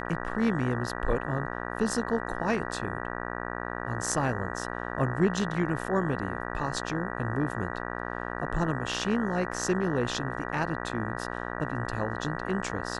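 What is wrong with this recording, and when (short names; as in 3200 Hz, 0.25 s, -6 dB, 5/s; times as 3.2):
buzz 60 Hz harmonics 32 -35 dBFS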